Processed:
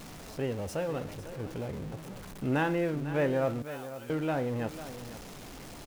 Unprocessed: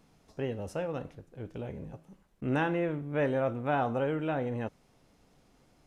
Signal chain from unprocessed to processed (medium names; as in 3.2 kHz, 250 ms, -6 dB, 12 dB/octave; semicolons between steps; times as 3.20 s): jump at every zero crossing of -40.5 dBFS; 3.62–4.10 s: differentiator; delay 499 ms -13 dB